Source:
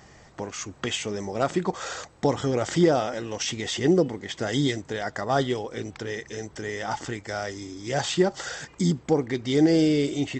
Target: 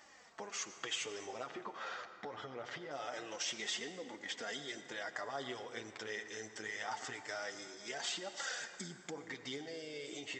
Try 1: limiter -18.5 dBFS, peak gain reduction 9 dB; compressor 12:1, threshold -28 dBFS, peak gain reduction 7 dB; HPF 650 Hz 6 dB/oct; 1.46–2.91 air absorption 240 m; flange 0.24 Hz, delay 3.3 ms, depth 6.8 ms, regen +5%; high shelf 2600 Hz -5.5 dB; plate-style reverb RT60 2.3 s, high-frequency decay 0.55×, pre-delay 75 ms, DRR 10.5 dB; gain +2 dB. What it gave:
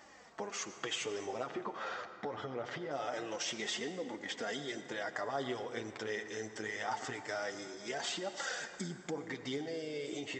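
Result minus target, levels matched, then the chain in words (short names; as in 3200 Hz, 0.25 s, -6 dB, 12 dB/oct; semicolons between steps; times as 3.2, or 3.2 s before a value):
500 Hz band +3.0 dB
limiter -18.5 dBFS, peak gain reduction 9 dB; compressor 12:1, threshold -28 dBFS, peak gain reduction 7 dB; HPF 1600 Hz 6 dB/oct; 1.46–2.91 air absorption 240 m; flange 0.24 Hz, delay 3.3 ms, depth 6.8 ms, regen +5%; high shelf 2600 Hz -5.5 dB; plate-style reverb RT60 2.3 s, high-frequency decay 0.55×, pre-delay 75 ms, DRR 10.5 dB; gain +2 dB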